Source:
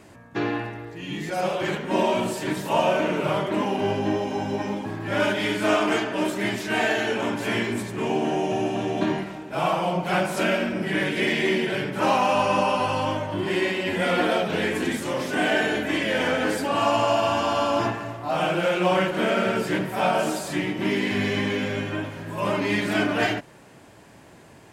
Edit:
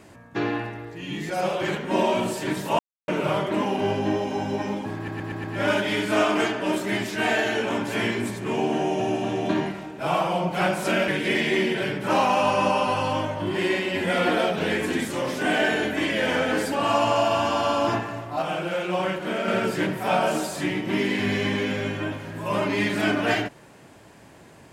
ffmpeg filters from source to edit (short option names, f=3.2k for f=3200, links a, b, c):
-filter_complex "[0:a]asplit=10[a][b][c][d][e][f][g][h][i][j];[a]atrim=end=2.79,asetpts=PTS-STARTPTS,afade=t=out:st=2.786:d=0.004:c=hsin[k];[b]atrim=start=2.79:end=3.08,asetpts=PTS-STARTPTS,volume=0[l];[c]atrim=start=3.08:end=5.082,asetpts=PTS-STARTPTS,afade=t=in:d=0.004:c=hsin[m];[d]atrim=start=4.958:end=5.082[n];[e]atrim=start=4.958:end=5.082[o];[f]atrim=start=4.958:end=5.082[p];[g]atrim=start=4.958:end=10.602[q];[h]atrim=start=10.998:end=18.342[r];[i]atrim=start=18.338:end=19.402,asetpts=PTS-STARTPTS,volume=-4.5dB[s];[j]atrim=start=19.398[t];[k][l][m]concat=n=3:v=0:a=1[u];[u][n]acrossfade=d=0.004:c1=hsin:c2=hsin[v];[v][o]acrossfade=d=0.004:c1=hsin:c2=hsin[w];[w][p]acrossfade=d=0.004:c1=hsin:c2=hsin[x];[x][q]acrossfade=d=0.004:c1=hsin:c2=hsin[y];[y][r]acrossfade=d=0.004:c1=hsin:c2=hsin[z];[z][s]acrossfade=d=0.004:c1=hsin:c2=hsin[aa];[aa][t]acrossfade=d=0.004:c1=hsin:c2=hsin"